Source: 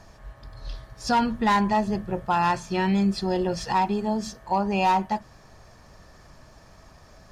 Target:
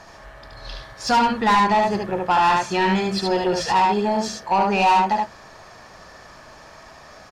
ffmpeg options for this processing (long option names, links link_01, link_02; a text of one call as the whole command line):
ffmpeg -i in.wav -filter_complex "[0:a]aecho=1:1:73:0.668,asplit=2[link_01][link_02];[link_02]highpass=frequency=720:poles=1,volume=16dB,asoftclip=type=tanh:threshold=-9.5dB[link_03];[link_01][link_03]amix=inputs=2:normalize=0,lowpass=frequency=4000:poles=1,volume=-6dB" out.wav